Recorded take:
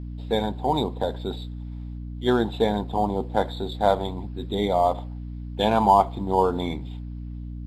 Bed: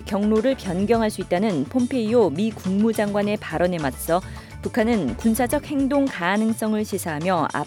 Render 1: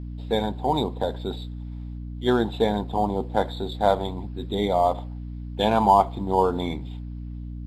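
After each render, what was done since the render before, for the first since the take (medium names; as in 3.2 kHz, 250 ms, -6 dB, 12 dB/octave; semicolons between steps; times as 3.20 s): no audible change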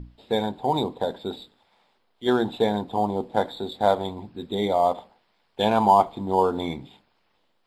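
hum notches 60/120/180/240/300 Hz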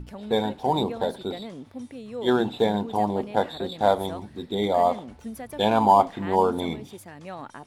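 add bed -17 dB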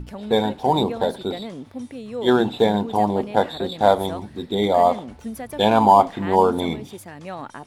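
trim +4.5 dB; peak limiter -2 dBFS, peak gain reduction 1.5 dB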